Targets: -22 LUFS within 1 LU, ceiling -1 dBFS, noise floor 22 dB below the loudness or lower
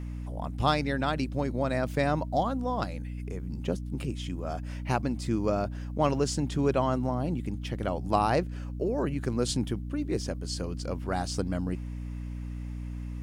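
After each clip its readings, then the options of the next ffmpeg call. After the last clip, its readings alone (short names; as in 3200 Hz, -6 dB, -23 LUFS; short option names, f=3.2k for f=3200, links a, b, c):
hum 60 Hz; harmonics up to 300 Hz; hum level -33 dBFS; loudness -30.5 LUFS; peak -11.0 dBFS; loudness target -22.0 LUFS
-> -af "bandreject=f=60:t=h:w=6,bandreject=f=120:t=h:w=6,bandreject=f=180:t=h:w=6,bandreject=f=240:t=h:w=6,bandreject=f=300:t=h:w=6"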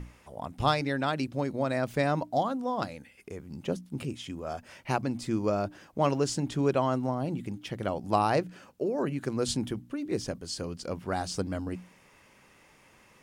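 hum none; loudness -31.0 LUFS; peak -10.5 dBFS; loudness target -22.0 LUFS
-> -af "volume=9dB"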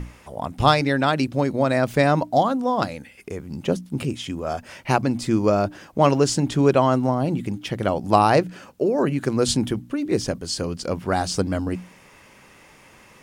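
loudness -22.0 LUFS; peak -1.5 dBFS; noise floor -51 dBFS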